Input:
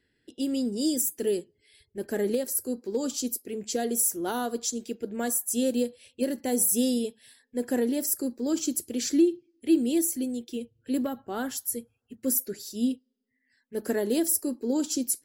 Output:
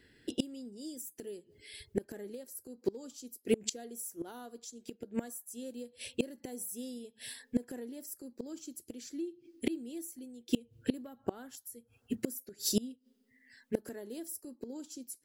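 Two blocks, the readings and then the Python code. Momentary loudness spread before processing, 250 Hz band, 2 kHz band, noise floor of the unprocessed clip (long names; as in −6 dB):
11 LU, −11.5 dB, −9.0 dB, −75 dBFS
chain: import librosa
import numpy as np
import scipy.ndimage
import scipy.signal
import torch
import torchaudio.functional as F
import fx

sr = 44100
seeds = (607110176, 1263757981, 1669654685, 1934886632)

y = fx.gate_flip(x, sr, shuts_db=-26.0, range_db=-27)
y = y * 10.0 ** (9.5 / 20.0)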